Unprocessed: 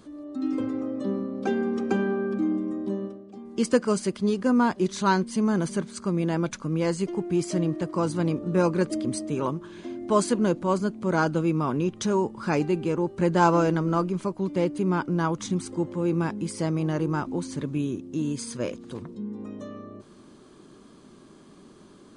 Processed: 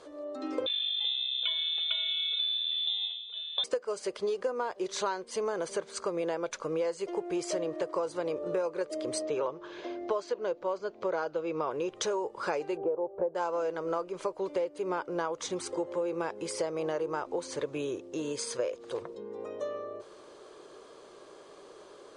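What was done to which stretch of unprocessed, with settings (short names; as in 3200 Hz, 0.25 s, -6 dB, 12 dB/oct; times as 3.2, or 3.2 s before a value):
0.66–3.64 inverted band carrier 3800 Hz
9.22–11.71 LPF 5900 Hz 24 dB/oct
12.77–13.35 synth low-pass 710 Hz, resonance Q 2.4
whole clip: LPF 8300 Hz 12 dB/oct; resonant low shelf 330 Hz -13.5 dB, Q 3; compressor 12:1, threshold -30 dBFS; gain +2 dB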